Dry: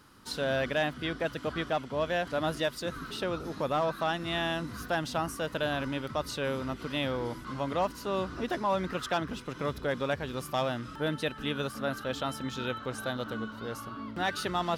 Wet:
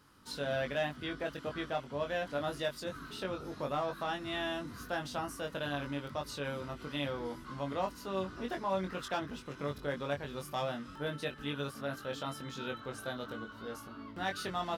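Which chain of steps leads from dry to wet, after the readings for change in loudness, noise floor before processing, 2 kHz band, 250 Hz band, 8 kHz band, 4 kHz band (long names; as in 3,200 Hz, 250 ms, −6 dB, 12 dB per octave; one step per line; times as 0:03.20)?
−5.5 dB, −46 dBFS, −5.5 dB, −5.5 dB, −5.5 dB, −5.5 dB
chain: double-tracking delay 21 ms −4 dB
level −7 dB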